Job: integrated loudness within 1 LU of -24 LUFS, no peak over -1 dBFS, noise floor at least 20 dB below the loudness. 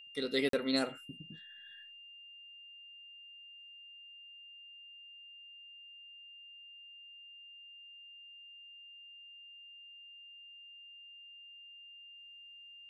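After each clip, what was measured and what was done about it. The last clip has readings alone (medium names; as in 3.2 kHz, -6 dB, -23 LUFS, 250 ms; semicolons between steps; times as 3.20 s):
dropouts 1; longest dropout 43 ms; steady tone 2.8 kHz; tone level -51 dBFS; loudness -44.0 LUFS; peak level -18.0 dBFS; loudness target -24.0 LUFS
-> interpolate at 0.49 s, 43 ms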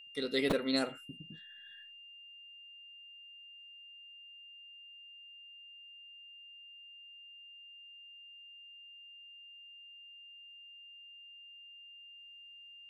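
dropouts 0; steady tone 2.8 kHz; tone level -51 dBFS
-> band-stop 2.8 kHz, Q 30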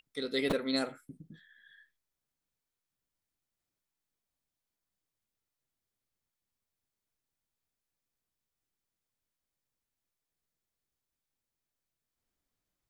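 steady tone not found; loudness -33.0 LUFS; peak level -16.0 dBFS; loudness target -24.0 LUFS
-> trim +9 dB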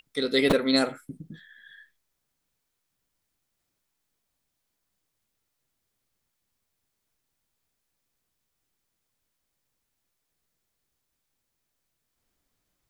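loudness -24.0 LUFS; peak level -7.0 dBFS; noise floor -80 dBFS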